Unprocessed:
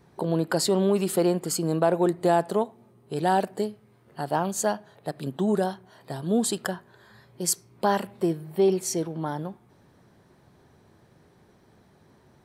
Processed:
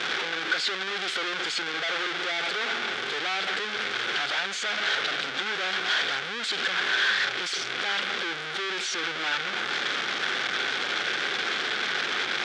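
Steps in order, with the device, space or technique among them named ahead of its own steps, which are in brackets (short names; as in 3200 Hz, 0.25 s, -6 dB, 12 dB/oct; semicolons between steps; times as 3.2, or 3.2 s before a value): home computer beeper (infinite clipping; speaker cabinet 620–5400 Hz, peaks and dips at 630 Hz -8 dB, 960 Hz -10 dB, 1500 Hz +9 dB, 2200 Hz +5 dB, 3400 Hz +9 dB); gain +1.5 dB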